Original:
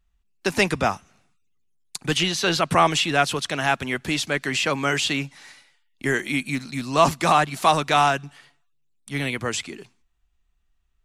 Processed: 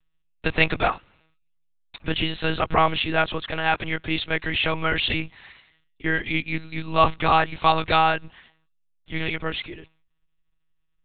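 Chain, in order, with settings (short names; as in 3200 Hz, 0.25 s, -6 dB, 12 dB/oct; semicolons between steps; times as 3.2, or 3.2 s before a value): high shelf 2800 Hz +9 dB, from 2.08 s -2.5 dB, from 3.56 s +4.5 dB; monotone LPC vocoder at 8 kHz 160 Hz; gain -1 dB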